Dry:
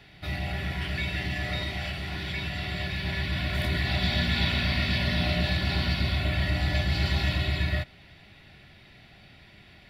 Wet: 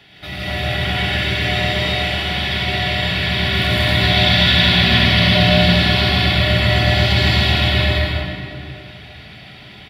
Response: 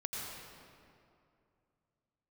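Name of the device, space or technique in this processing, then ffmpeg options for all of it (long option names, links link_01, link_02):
stadium PA: -filter_complex "[0:a]highpass=frequency=150:poles=1,equalizer=frequency=3200:width_type=o:width=0.25:gain=7.5,aecho=1:1:160.3|227.4:1|0.794[link_01];[1:a]atrim=start_sample=2205[link_02];[link_01][link_02]afir=irnorm=-1:irlink=0,volume=7.5dB"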